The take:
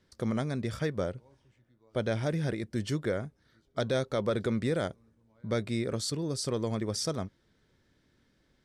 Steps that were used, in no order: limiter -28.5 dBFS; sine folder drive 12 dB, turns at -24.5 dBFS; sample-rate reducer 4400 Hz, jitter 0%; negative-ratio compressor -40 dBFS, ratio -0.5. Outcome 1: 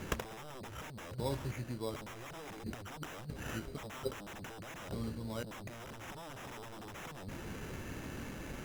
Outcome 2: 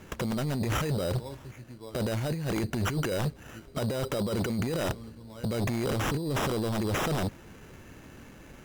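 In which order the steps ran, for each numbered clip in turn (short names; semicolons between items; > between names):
sample-rate reducer > sine folder > limiter > negative-ratio compressor; sample-rate reducer > limiter > negative-ratio compressor > sine folder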